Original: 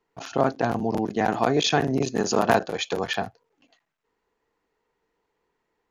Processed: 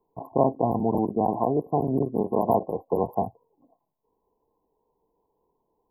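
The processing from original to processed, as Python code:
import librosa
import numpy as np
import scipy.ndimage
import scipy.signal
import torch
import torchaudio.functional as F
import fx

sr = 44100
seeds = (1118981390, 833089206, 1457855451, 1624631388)

y = fx.rider(x, sr, range_db=5, speed_s=0.5)
y = fx.brickwall_bandstop(y, sr, low_hz=1100.0, high_hz=11000.0)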